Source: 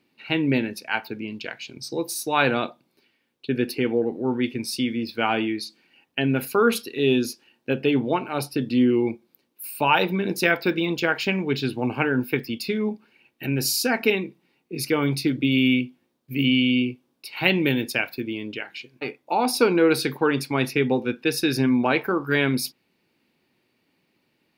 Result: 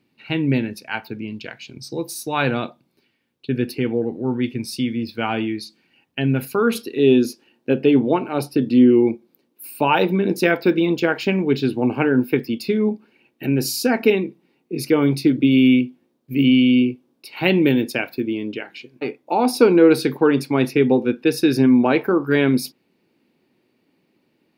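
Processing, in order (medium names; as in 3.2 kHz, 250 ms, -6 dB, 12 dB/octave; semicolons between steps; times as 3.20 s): peaking EQ 98 Hz +8.5 dB 2.6 oct, from 6.75 s 310 Hz; trim -1.5 dB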